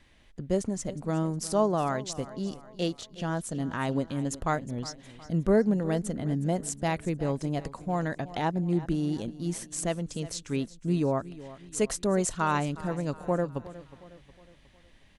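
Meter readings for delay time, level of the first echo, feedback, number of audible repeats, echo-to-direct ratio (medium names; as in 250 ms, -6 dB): 363 ms, -17.0 dB, 47%, 3, -16.0 dB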